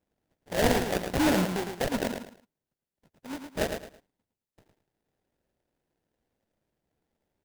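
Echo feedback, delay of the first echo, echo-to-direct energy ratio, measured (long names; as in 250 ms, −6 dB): 27%, 109 ms, −6.0 dB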